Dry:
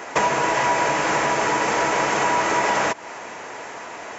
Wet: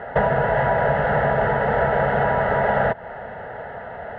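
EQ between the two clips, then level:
low-pass filter 2,600 Hz 24 dB per octave
spectral tilt −3.5 dB per octave
phaser with its sweep stopped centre 1,600 Hz, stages 8
+3.5 dB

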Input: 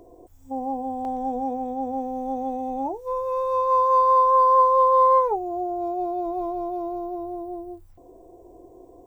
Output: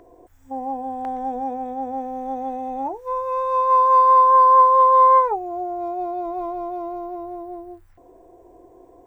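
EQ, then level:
parametric band 1,700 Hz +14.5 dB 1.4 octaves
−2.5 dB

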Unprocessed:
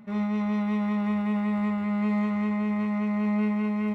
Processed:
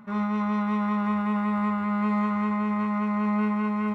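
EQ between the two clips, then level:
flat-topped bell 1,200 Hz +9 dB 1 octave
0.0 dB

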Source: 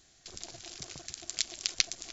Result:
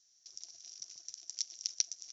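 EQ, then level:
resonant band-pass 5,700 Hz, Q 12
spectral tilt −3.5 dB per octave
+13.0 dB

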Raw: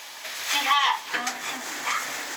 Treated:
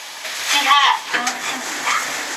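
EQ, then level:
low-pass filter 12,000 Hz 24 dB per octave
+8.0 dB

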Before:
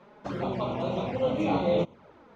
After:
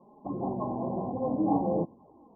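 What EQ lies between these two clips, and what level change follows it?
Chebyshev low-pass with heavy ripple 1,100 Hz, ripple 9 dB
+3.0 dB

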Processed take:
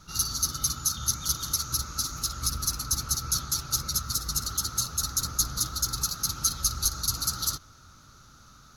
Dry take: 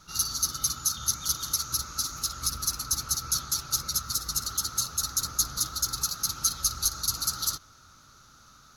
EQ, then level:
low-shelf EQ 320 Hz +6.5 dB
0.0 dB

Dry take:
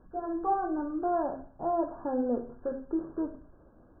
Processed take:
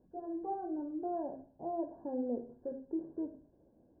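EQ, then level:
moving average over 35 samples
high-pass filter 220 Hz 6 dB per octave
high-frequency loss of the air 440 metres
−2.5 dB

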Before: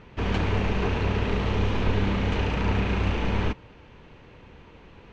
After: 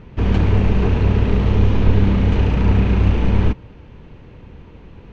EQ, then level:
low-shelf EQ 400 Hz +11.5 dB
0.0 dB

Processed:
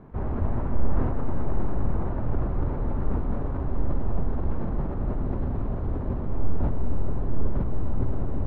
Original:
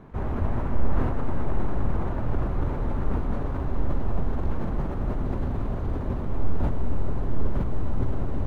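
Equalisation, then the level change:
low-pass filter 1,200 Hz 6 dB per octave
0.0 dB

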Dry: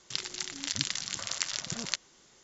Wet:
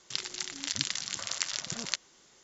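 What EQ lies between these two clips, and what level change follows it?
low-shelf EQ 200 Hz −4.5 dB
0.0 dB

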